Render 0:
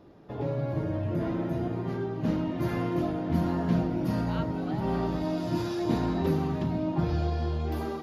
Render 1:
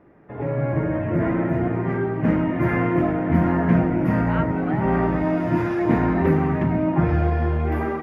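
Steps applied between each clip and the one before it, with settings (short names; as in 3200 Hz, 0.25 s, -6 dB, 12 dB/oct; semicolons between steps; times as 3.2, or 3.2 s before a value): AGC gain up to 8 dB; resonant high shelf 2900 Hz -12.5 dB, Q 3; notches 50/100 Hz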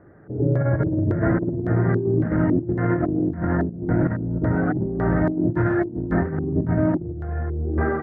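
LFO low-pass square 1.8 Hz 350–1600 Hz; fifteen-band EQ 100 Hz +8 dB, 250 Hz -3 dB, 1000 Hz -9 dB, 2500 Hz -12 dB; negative-ratio compressor -21 dBFS, ratio -0.5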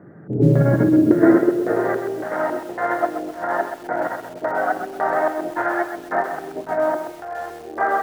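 high-pass sweep 160 Hz -> 730 Hz, 0.38–2.25; lo-fi delay 0.129 s, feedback 35%, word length 7-bit, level -8 dB; gain +3.5 dB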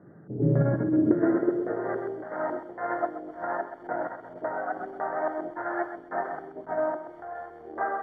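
polynomial smoothing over 41 samples; tremolo triangle 2.1 Hz, depth 45%; gain -6.5 dB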